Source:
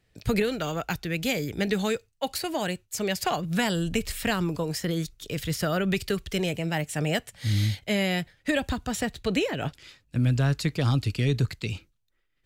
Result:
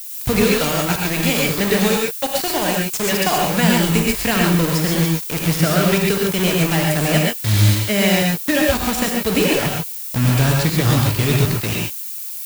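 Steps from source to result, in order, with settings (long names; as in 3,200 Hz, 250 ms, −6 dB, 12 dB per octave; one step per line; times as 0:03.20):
bit reduction 5 bits
background noise violet −38 dBFS
reverb whose tail is shaped and stops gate 160 ms rising, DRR −1 dB
level +5.5 dB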